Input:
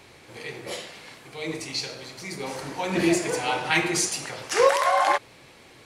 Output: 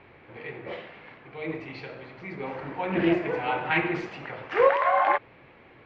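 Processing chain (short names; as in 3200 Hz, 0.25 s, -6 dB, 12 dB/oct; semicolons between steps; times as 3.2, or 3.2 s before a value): LPF 2500 Hz 24 dB/oct; Doppler distortion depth 0.17 ms; gain -1 dB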